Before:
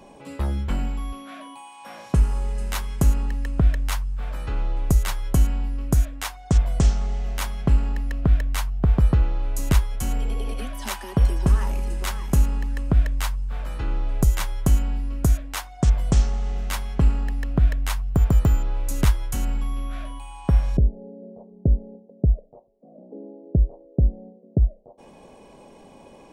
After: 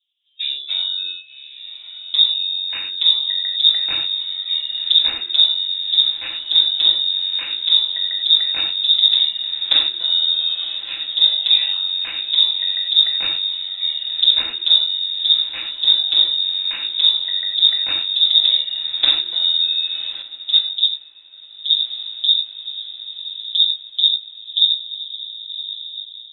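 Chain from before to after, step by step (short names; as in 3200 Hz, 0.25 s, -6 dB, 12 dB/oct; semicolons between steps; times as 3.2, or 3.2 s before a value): minimum comb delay 5.6 ms; spectral noise reduction 26 dB; in parallel at -3 dB: level quantiser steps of 18 dB; on the sum: low-pass opened by the level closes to 630 Hz, open at -14.5 dBFS; diffused feedback echo 1.135 s, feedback 46%, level -11 dB; on a send at -1.5 dB: reverb, pre-delay 3 ms; on the sum: inverted band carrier 3700 Hz; 20.22–21.77 upward expander 1.5:1, over -33 dBFS; gain -1 dB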